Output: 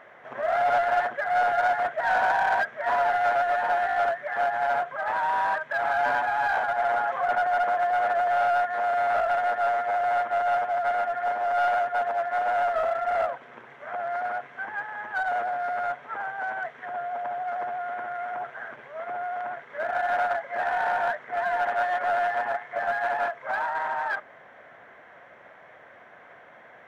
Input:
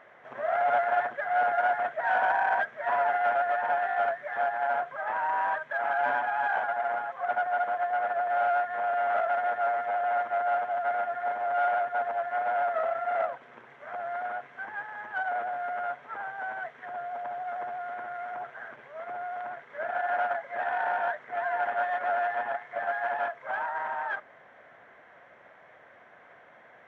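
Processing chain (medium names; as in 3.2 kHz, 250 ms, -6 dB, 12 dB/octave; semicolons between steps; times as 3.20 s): in parallel at -4 dB: hard clipper -28.5 dBFS, distortion -9 dB; 6.78–8.66 s: on the sum: level flattener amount 50%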